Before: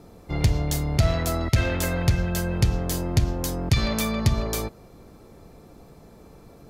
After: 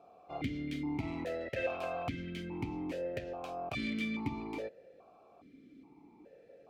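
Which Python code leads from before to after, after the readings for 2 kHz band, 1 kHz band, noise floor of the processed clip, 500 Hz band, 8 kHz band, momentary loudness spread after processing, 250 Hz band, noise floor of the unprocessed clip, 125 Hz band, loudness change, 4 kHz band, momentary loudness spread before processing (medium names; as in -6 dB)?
-10.0 dB, -9.0 dB, -61 dBFS, -8.5 dB, -29.5 dB, 11 LU, -9.5 dB, -49 dBFS, -22.0 dB, -14.0 dB, -16.0 dB, 5 LU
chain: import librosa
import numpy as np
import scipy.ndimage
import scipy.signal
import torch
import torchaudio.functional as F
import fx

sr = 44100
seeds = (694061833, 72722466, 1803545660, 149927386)

y = fx.tracing_dist(x, sr, depth_ms=0.31)
y = fx.vowel_held(y, sr, hz=2.4)
y = y * 10.0 ** (2.5 / 20.0)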